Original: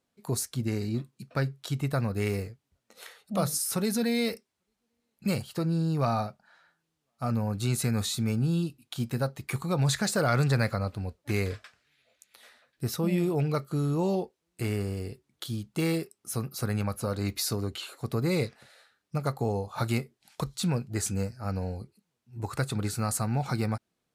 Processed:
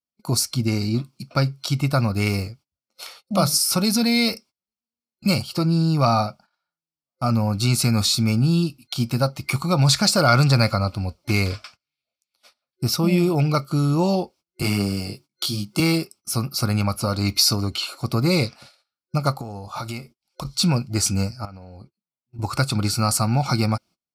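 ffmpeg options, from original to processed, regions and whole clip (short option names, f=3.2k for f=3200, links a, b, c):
-filter_complex "[0:a]asettb=1/sr,asplit=3[a][b][c];[a]atrim=end=14.624[d];[b]atrim=start=14.62:end=15.8,asetpts=PTS-STARTPTS,afade=t=in:d=0.004:c=qsin,afade=t=out:st=1.176:d=0.004:c=qsin,highpass=f=120:w=0.5412,highpass=f=120:w=1.3066,highshelf=f=4.9k:g=3.5,asplit=2[e][f];[f]adelay=20,volume=-3dB[g];[e][g]amix=inputs=2:normalize=0,atrim=end_sample=52038[h];[c]atrim=start=15.796[i];[d][h]acrossfade=d=0.004:c1=hsin:c2=qsin[j];[j][i]acrossfade=d=0.004:c1=qsin:c2=hsin,asettb=1/sr,asplit=3[k][l][m];[k]atrim=end=19.324[n];[l]atrim=start=19.32:end=20.45,asetpts=PTS-STARTPTS,afade=t=in:d=0.004:c=qsin,afade=t=out:st=1.126:d=0.004:c=qsin,bandreject=f=4.3k:w=22,asubboost=boost=11.5:cutoff=53,acompressor=threshold=-35dB:ratio=8:attack=3.2:release=140:knee=1:detection=peak[o];[m]atrim=start=20.446[p];[n][o]acrossfade=d=0.004:c1=hsin:c2=qsin[q];[q][p]acrossfade=d=0.004:c1=qsin:c2=hsin,asettb=1/sr,asplit=3[r][s][t];[r]atrim=end=21.454[u];[s]atrim=start=21.45:end=22.39,asetpts=PTS-STARTPTS,afade=t=in:d=0.004:c=qsin,afade=t=out:st=0.936:d=0.004:c=qsin,bass=f=250:g=-4,treble=f=4k:g=-12,acompressor=threshold=-43dB:ratio=10:attack=3.2:release=140:knee=1:detection=peak[v];[t]atrim=start=22.386[w];[u][v]acrossfade=d=0.004:c1=hsin:c2=qsin[x];[x][w]acrossfade=d=0.004:c1=qsin:c2=hsin,adynamicequalizer=threshold=0.00355:dfrequency=1800:dqfactor=1:tfrequency=1800:tqfactor=1:attack=5:release=100:ratio=0.375:range=2:mode=boostabove:tftype=bell,agate=range=-27dB:threshold=-52dB:ratio=16:detection=peak,superequalizer=7b=0.447:11b=0.251:14b=2.51,volume=8dB"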